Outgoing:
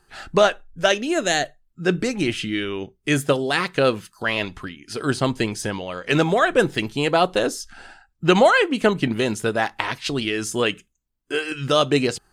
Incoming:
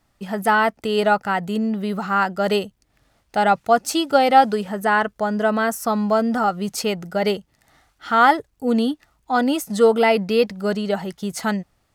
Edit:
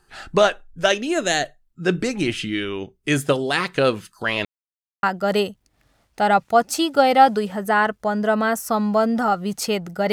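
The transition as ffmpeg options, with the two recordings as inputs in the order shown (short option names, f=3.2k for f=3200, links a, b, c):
-filter_complex "[0:a]apad=whole_dur=10.12,atrim=end=10.12,asplit=2[a][b];[a]atrim=end=4.45,asetpts=PTS-STARTPTS,afade=t=out:st=4.446:d=0.004:c=hsin[c];[b]atrim=start=4.45:end=5.03,asetpts=PTS-STARTPTS,volume=0[d];[1:a]atrim=start=2.19:end=7.28,asetpts=PTS-STARTPTS,afade=t=in:d=0.004:c=hsin[e];[c][d][e]concat=n=3:v=0:a=1"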